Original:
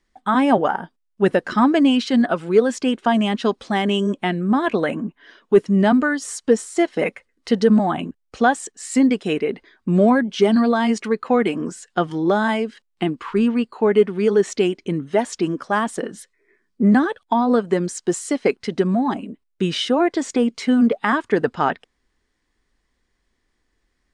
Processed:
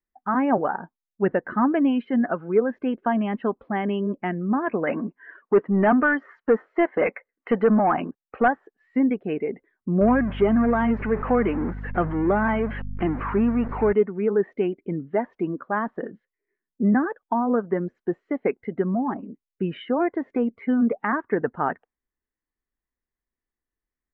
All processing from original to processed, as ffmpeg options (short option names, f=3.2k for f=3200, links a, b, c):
-filter_complex "[0:a]asettb=1/sr,asplit=3[a][b][c];[a]atrim=end=4.874[d];[b]atrim=start=4.87:end=8.48,asetpts=PTS-STARTPTS,afade=t=in:d=0.004:c=qsin,afade=t=out:st=3.606:d=0.004:c=qsin,bandreject=f=3.8k:w=25,asplit=2[e][f];[f]highpass=f=720:p=1,volume=17dB,asoftclip=type=tanh:threshold=-4dB[g];[e][g]amix=inputs=2:normalize=0,lowpass=f=2.3k:p=1,volume=-6dB[h];[c]atrim=start=8.476[i];[d][h]acrossfade=d=0.004:c1=hsin:c2=qsin[j];[j][i]acrossfade=d=0.004:c1=qsin:c2=hsin,asettb=1/sr,asplit=3[k][l][m];[k]atrim=end=10.014[n];[l]atrim=start=10.01:end=13.93,asetpts=PTS-STARTPTS,afade=t=in:d=0.004:c=qsin,afade=t=out:st=3.916:d=0.004:c=qsin,aeval=exprs='val(0)+0.5*0.0841*sgn(val(0))':c=same,aeval=exprs='val(0)+0.0447*(sin(2*PI*50*n/s)+sin(2*PI*2*50*n/s)/2+sin(2*PI*3*50*n/s)/3+sin(2*PI*4*50*n/s)/4+sin(2*PI*5*50*n/s)/5)':c=same[o];[m]atrim=start=13.926[p];[n][o]acrossfade=d=0.004:c1=hsin:c2=qsin[q];[q][p]acrossfade=d=0.004:c1=qsin:c2=hsin,lowpass=f=2.2k:w=0.5412,lowpass=f=2.2k:w=1.3066,afftdn=nr=15:nf=-39,volume=-5dB"